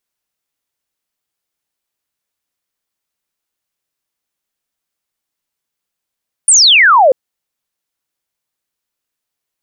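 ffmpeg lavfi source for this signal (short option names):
-f lavfi -i "aevalsrc='0.631*clip(t/0.002,0,1)*clip((0.64-t)/0.002,0,1)*sin(2*PI*9600*0.64/log(490/9600)*(exp(log(490/9600)*t/0.64)-1))':d=0.64:s=44100"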